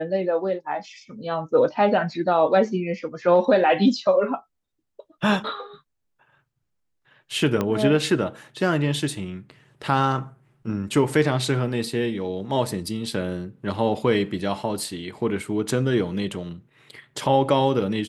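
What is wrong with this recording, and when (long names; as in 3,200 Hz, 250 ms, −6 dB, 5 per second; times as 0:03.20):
0:07.61: click −11 dBFS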